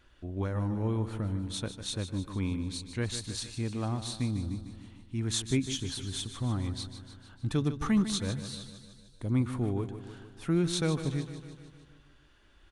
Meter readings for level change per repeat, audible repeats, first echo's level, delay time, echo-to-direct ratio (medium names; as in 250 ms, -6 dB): -4.5 dB, 6, -11.0 dB, 151 ms, -9.0 dB